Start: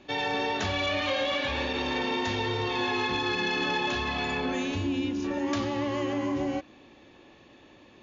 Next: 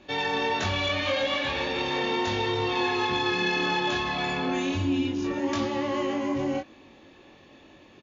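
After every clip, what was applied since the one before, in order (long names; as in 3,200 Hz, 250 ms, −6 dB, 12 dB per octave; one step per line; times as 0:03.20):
double-tracking delay 22 ms −3 dB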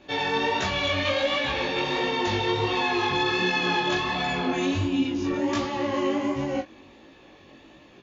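chorus effect 1.4 Hz, delay 15 ms, depth 7 ms
level +4.5 dB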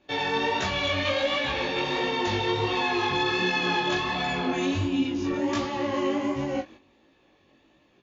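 noise gate −44 dBFS, range −10 dB
level −1 dB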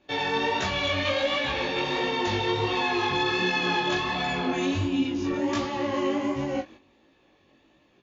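no processing that can be heard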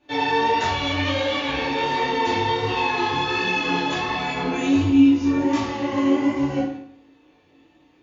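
feedback delay network reverb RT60 0.63 s, low-frequency decay 1.1×, high-frequency decay 0.7×, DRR −5.5 dB
level −3.5 dB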